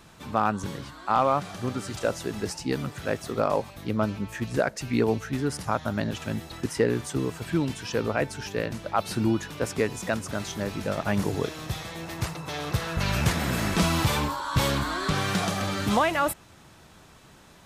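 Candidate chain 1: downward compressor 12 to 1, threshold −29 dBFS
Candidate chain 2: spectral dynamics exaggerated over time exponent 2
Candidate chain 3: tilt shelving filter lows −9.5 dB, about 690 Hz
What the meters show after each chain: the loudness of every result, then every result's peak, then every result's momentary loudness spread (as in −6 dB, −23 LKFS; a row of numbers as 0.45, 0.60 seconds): −35.0, −33.5, −25.0 LKFS; −16.0, −14.0, −4.5 dBFS; 4, 14, 10 LU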